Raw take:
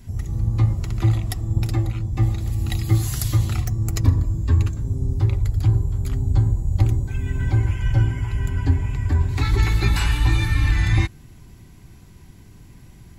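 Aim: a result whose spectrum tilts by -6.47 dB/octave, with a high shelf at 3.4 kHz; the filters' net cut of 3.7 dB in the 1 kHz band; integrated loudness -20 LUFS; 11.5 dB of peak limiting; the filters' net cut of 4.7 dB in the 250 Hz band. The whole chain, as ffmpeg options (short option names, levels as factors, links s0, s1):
-af "equalizer=f=250:t=o:g=-8,equalizer=f=1000:t=o:g=-3.5,highshelf=f=3400:g=-7.5,volume=2,alimiter=limit=0.299:level=0:latency=1"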